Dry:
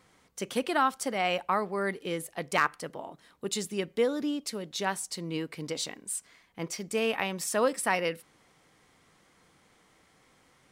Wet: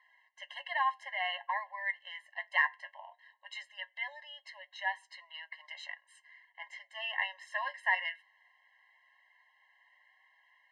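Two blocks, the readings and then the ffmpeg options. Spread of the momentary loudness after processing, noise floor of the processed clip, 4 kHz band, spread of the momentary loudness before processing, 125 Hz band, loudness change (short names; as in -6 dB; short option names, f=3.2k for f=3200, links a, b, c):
18 LU, -72 dBFS, -5.5 dB, 13 LU, under -40 dB, -5.0 dB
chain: -af "asuperpass=centerf=1700:order=4:qfactor=1.2,flanger=delay=5.8:depth=5:regen=59:speed=0.19:shape=triangular,afftfilt=real='re*eq(mod(floor(b*sr/1024/540),2),1)':imag='im*eq(mod(floor(b*sr/1024/540),2),1)':win_size=1024:overlap=0.75,volume=8.5dB"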